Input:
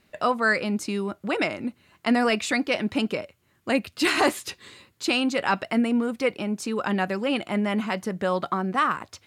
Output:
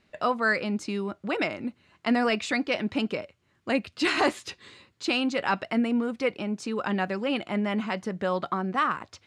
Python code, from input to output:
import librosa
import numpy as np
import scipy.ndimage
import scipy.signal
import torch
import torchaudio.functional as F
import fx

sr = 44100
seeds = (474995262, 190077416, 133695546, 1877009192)

y = scipy.signal.sosfilt(scipy.signal.butter(2, 6400.0, 'lowpass', fs=sr, output='sos'), x)
y = F.gain(torch.from_numpy(y), -2.5).numpy()